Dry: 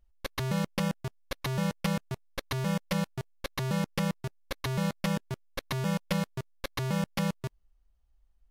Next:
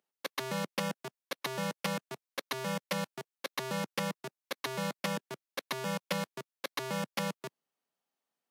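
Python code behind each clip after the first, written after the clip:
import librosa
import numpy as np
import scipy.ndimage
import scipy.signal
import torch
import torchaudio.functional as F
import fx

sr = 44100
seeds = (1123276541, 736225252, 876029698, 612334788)

y = scipy.signal.sosfilt(scipy.signal.bessel(8, 290.0, 'highpass', norm='mag', fs=sr, output='sos'), x)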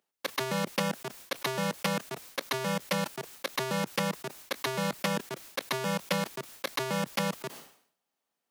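y = fx.sustainer(x, sr, db_per_s=100.0)
y = y * librosa.db_to_amplitude(4.0)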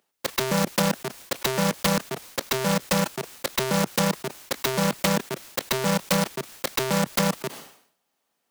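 y = fx.self_delay(x, sr, depth_ms=0.47)
y = y * librosa.db_to_amplitude(8.5)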